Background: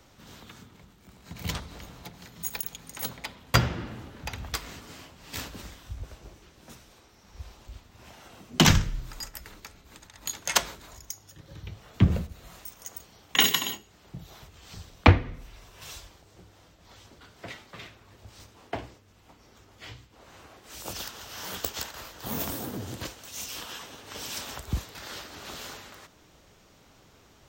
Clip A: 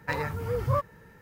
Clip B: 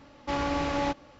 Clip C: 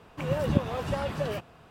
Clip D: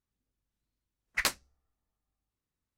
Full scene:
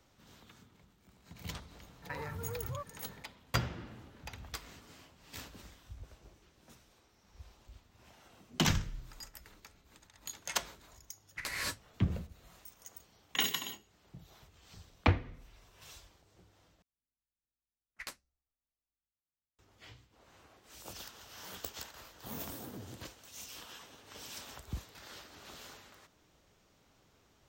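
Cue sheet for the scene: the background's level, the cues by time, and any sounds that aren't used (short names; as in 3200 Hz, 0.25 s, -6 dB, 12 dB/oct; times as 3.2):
background -10.5 dB
2.02 add A -2.5 dB + compressor, threshold -35 dBFS
10.2 add D -12.5 dB + non-linear reverb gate 0.25 s rising, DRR -6 dB
16.82 replace with D -16 dB
not used: B, C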